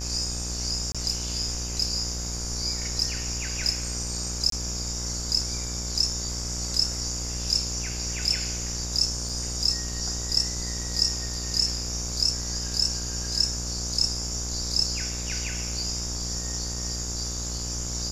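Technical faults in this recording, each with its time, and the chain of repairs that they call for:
buzz 60 Hz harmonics 29 -34 dBFS
0.92–0.95 s: dropout 26 ms
4.50–4.52 s: dropout 23 ms
9.29 s: dropout 3.5 ms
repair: de-hum 60 Hz, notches 29; interpolate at 0.92 s, 26 ms; interpolate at 4.50 s, 23 ms; interpolate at 9.29 s, 3.5 ms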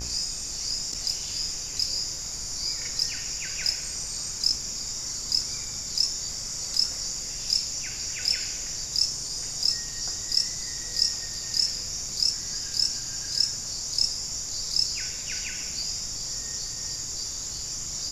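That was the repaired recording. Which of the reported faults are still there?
nothing left

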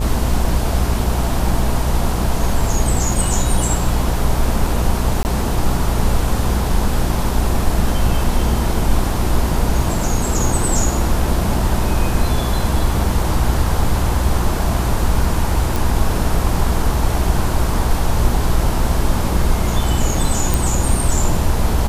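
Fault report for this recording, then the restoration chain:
buzz 60 Hz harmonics 17 -21 dBFS
5.23–5.25 s: dropout 19 ms
15.76 s: pop
20.54 s: pop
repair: de-click; de-hum 60 Hz, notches 17; interpolate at 5.23 s, 19 ms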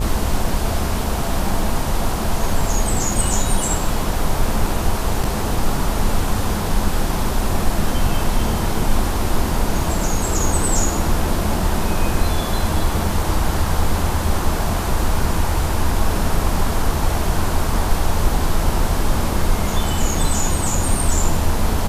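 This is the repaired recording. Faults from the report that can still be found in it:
nothing left

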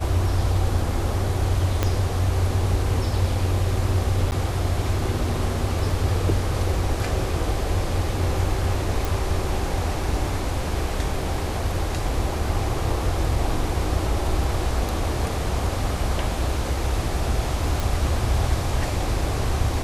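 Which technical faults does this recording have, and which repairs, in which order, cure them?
1.83 s: pop -7 dBFS
4.31–4.32 s: dropout 9.9 ms
9.05 s: pop
17.80 s: pop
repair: de-click; interpolate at 4.31 s, 9.9 ms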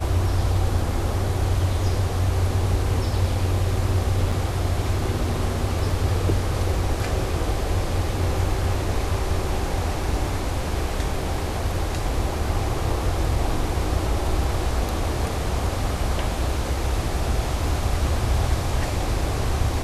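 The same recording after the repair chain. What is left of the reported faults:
1.83 s: pop

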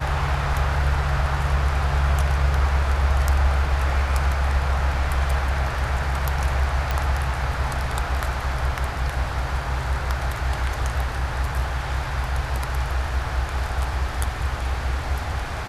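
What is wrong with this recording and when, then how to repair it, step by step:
6.91 s: pop -10 dBFS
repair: de-click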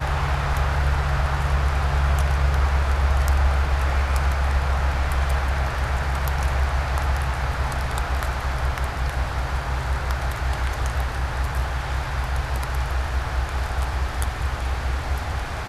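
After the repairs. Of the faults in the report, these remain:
nothing left

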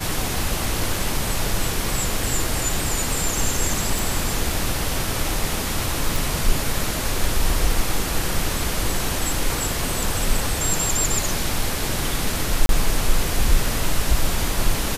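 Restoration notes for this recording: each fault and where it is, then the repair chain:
3.99 s: pop
6.16 s: pop
12.66–12.69 s: dropout 32 ms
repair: de-click; interpolate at 12.66 s, 32 ms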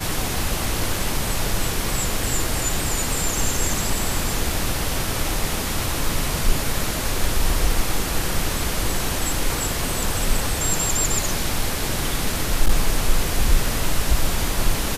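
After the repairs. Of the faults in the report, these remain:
nothing left

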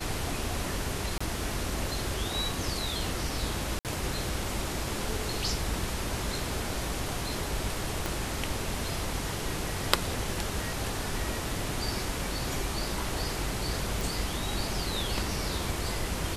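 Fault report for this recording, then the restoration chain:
1.18–1.21 s: dropout 25 ms
3.79–3.85 s: dropout 58 ms
8.06 s: pop
14.01 s: pop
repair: de-click; interpolate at 1.18 s, 25 ms; interpolate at 3.79 s, 58 ms

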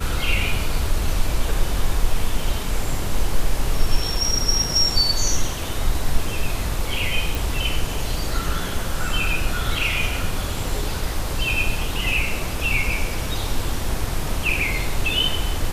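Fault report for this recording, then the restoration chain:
7.35 s: pop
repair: de-click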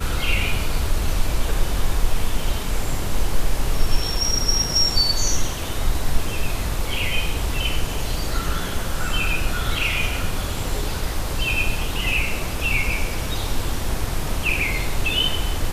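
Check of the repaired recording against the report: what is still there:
nothing left

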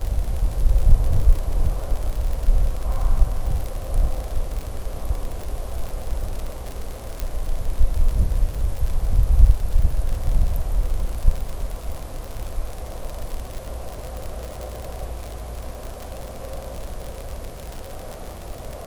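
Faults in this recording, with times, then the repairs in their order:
crackle 59 per s -25 dBFS
7.20 s: pop -12 dBFS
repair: de-click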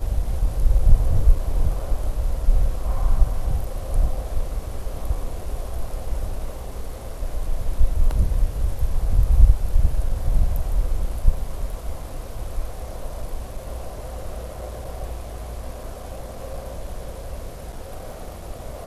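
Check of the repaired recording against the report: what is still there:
nothing left

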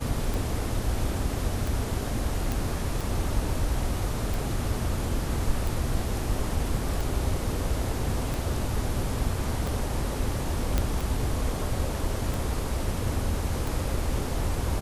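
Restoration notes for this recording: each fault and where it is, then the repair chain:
tick 45 rpm
2.52 s: pop
10.78 s: pop -10 dBFS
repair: de-click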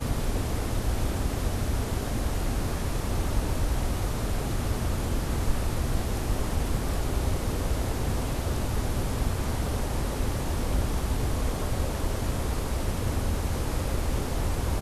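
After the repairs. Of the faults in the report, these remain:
nothing left

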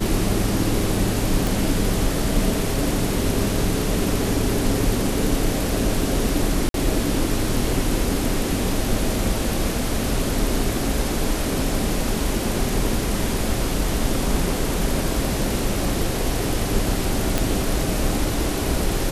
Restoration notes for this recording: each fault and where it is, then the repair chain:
1.47 s: pop
6.69–6.74 s: dropout 52 ms
17.38 s: pop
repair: de-click; interpolate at 6.69 s, 52 ms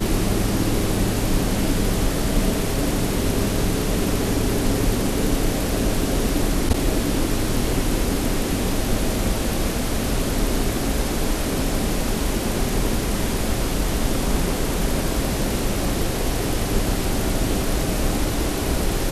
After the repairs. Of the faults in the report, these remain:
nothing left

